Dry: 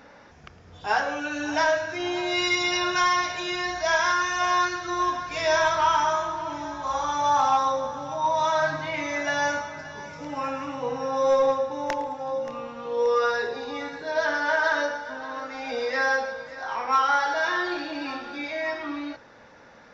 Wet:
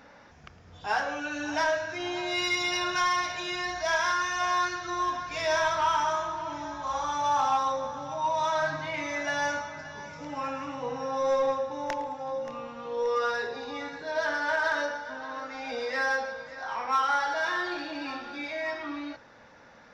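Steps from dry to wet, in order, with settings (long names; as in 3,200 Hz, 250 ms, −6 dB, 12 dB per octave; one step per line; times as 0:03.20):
parametric band 400 Hz −3 dB 0.75 octaves
in parallel at −9 dB: soft clipping −27.5 dBFS, distortion −8 dB
on the sum: level −5 dB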